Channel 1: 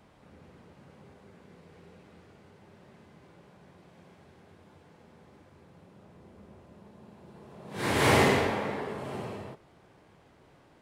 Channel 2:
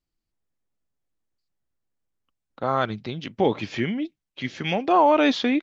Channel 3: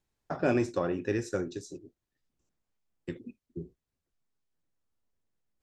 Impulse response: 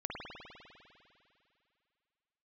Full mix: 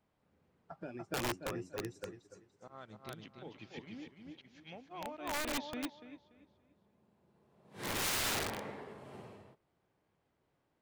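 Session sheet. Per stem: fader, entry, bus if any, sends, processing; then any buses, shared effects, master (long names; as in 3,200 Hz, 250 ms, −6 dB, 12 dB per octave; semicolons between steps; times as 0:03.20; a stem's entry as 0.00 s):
−8.0 dB, 0.00 s, no bus, no send, no echo send, no processing
−11.5 dB, 0.00 s, bus A, no send, echo send −6.5 dB, volume swells 195 ms
−0.5 dB, 0.40 s, bus A, no send, echo send −6.5 dB, spectral dynamics exaggerated over time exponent 2; high-pass filter 69 Hz 24 dB per octave; automatic ducking −15 dB, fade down 1.10 s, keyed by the second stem
bus A: 0.0 dB, downward compressor 4 to 1, threshold −42 dBFS, peak gain reduction 14.5 dB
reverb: not used
echo: repeating echo 289 ms, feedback 38%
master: wrap-around overflow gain 29 dB; expander for the loud parts 1.5 to 1, over −57 dBFS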